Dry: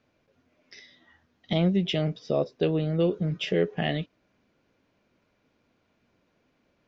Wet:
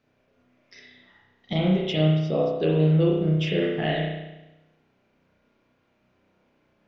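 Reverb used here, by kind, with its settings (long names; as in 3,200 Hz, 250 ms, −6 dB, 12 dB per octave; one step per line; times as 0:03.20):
spring reverb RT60 1 s, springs 32 ms, chirp 75 ms, DRR −3.5 dB
level −2 dB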